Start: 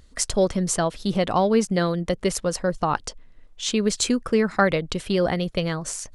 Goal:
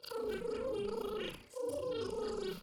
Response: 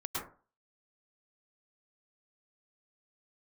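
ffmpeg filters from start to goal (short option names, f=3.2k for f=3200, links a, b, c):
-filter_complex "[0:a]afftfilt=real='re':imag='-im':win_size=8192:overlap=0.75,acrossover=split=200|3000[a][b][c];[b]acompressor=threshold=-37dB:ratio=10[d];[a][d][c]amix=inputs=3:normalize=0,asplit=2[e][f];[f]acrusher=bits=5:dc=4:mix=0:aa=0.000001,volume=-5.5dB[g];[e][g]amix=inputs=2:normalize=0,highpass=120,equalizer=f=210:t=q:w=4:g=9,equalizer=f=340:t=q:w=4:g=-5,equalizer=f=830:t=q:w=4:g=-9,equalizer=f=1.3k:t=q:w=4:g=7,equalizer=f=2.1k:t=q:w=4:g=7,equalizer=f=3.2k:t=q:w=4:g=-6,lowpass=f=4.2k:w=0.5412,lowpass=f=4.2k:w=1.3066,aecho=1:1:5:0.88,areverse,acompressor=threshold=-31dB:ratio=10,areverse,highshelf=f=2.3k:g=-9.5,bandreject=f=2.5k:w=16,asplit=6[h][i][j][k][l][m];[i]adelay=147,afreqshift=-86,volume=-11dB[n];[j]adelay=294,afreqshift=-172,volume=-16.8dB[o];[k]adelay=441,afreqshift=-258,volume=-22.7dB[p];[l]adelay=588,afreqshift=-344,volume=-28.5dB[q];[m]adelay=735,afreqshift=-430,volume=-34.4dB[r];[h][n][o][p][q][r]amix=inputs=6:normalize=0,asetrate=103194,aresample=44100,volume=-5dB"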